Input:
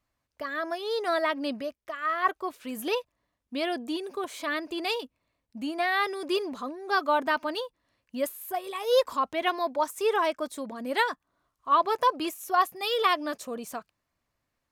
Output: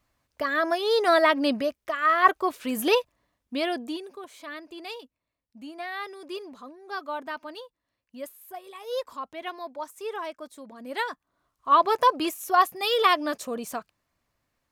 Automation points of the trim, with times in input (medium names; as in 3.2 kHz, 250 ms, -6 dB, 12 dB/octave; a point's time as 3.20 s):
2.98 s +7 dB
3.86 s +0.5 dB
4.20 s -8.5 dB
10.60 s -8.5 dB
11.69 s +3.5 dB